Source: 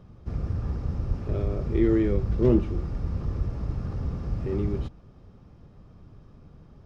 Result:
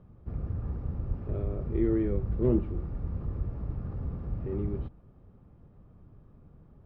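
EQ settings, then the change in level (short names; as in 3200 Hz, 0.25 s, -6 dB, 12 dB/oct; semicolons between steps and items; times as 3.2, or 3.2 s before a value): LPF 1700 Hz 6 dB/oct; air absorption 180 m; -4.5 dB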